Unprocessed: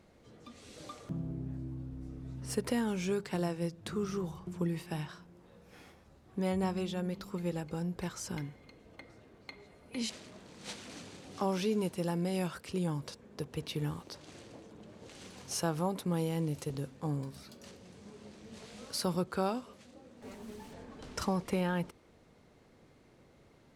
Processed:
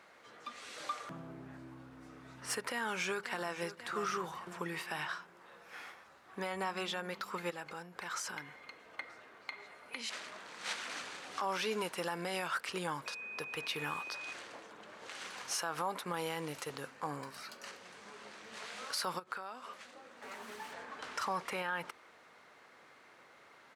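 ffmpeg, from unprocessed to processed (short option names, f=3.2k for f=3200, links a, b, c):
-filter_complex "[0:a]asplit=2[a][b];[b]afade=t=in:st=2.69:d=0.01,afade=t=out:st=3.51:d=0.01,aecho=0:1:540|1080|1620|2160:0.177828|0.0800226|0.0360102|0.0162046[c];[a][c]amix=inputs=2:normalize=0,asettb=1/sr,asplit=3[d][e][f];[d]atrim=end=7.504[g];[e]atrim=start=7.5:end=10.71,asetpts=PTS-STARTPTS,afade=t=in:d=0.004:c=qsin,afade=t=out:st=3.206:d=0.004:c=qsin,acompressor=threshold=-40dB:ratio=6:attack=3.2:release=140:knee=1:detection=peak[h];[f]atrim=start=10.706[i];[g][h]acrossfade=d=0.004:c1=hsin:c2=qsin[j];[j][i]acrossfade=d=0.004:c1=qsin:c2=hsin,asettb=1/sr,asplit=3[k][l][m];[k]atrim=end=13.064[n];[l]atrim=start=13.06:end=14.33,asetpts=PTS-STARTPTS,afade=t=in:d=0.004:c=qsin,afade=t=out:st=1.266:d=0.004:c=qsin,aeval=exprs='val(0)+0.00282*sin(2*PI*2500*n/s)':c=same[o];[m]atrim=start=14.326[p];[n][o]acrossfade=d=0.004:c1=hsin:c2=qsin[q];[q][p]acrossfade=d=0.004:c1=qsin:c2=hsin,asettb=1/sr,asplit=3[r][s][t];[r]atrim=end=16.844[u];[s]atrim=start=16.84:end=17.75,asetpts=PTS-STARTPTS,afade=t=in:d=0.004:c=qsin,afade=t=out:st=0.906:d=0.004:c=qsin,bandreject=f=3.5k:w=11[v];[t]atrim=start=17.746[w];[u][v]acrossfade=d=0.004:c1=hsin:c2=qsin[x];[x][w]acrossfade=d=0.004:c1=qsin:c2=hsin,asplit=3[y][z][aa];[y]afade=t=out:st=19.18:d=0.02[ab];[z]acompressor=threshold=-44dB:ratio=10:attack=3.2:release=140:knee=1:detection=peak,afade=t=in:st=19.18:d=0.02,afade=t=out:st=20.37:d=0.02[ac];[aa]afade=t=in:st=20.37:d=0.02[ad];[ab][ac][ad]amix=inputs=3:normalize=0,highpass=f=950:p=1,equalizer=f=1.4k:t=o:w=2:g=12,alimiter=level_in=4dB:limit=-24dB:level=0:latency=1:release=106,volume=-4dB,volume=2.5dB"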